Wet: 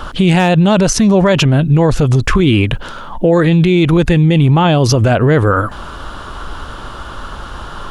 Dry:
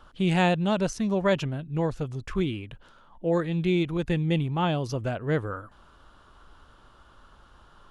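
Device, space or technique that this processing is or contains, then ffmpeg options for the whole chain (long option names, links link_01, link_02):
loud club master: -af "acompressor=threshold=-29dB:ratio=1.5,asoftclip=type=hard:threshold=-17.5dB,alimiter=level_in=29.5dB:limit=-1dB:release=50:level=0:latency=1,volume=-2.5dB"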